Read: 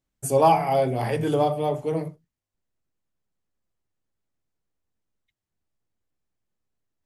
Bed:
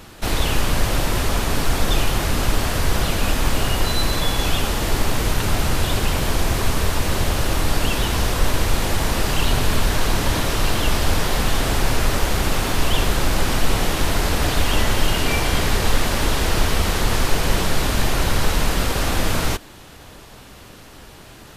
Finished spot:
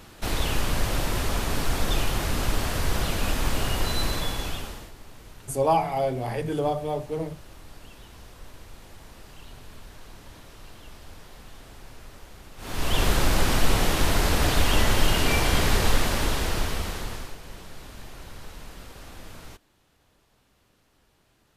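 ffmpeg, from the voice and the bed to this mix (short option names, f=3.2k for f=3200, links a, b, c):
-filter_complex "[0:a]adelay=5250,volume=-4dB[a];[1:a]volume=18dB,afade=t=out:st=4.06:d=0.86:silence=0.0944061,afade=t=in:st=12.57:d=0.5:silence=0.0630957,afade=t=out:st=15.77:d=1.6:silence=0.0944061[b];[a][b]amix=inputs=2:normalize=0"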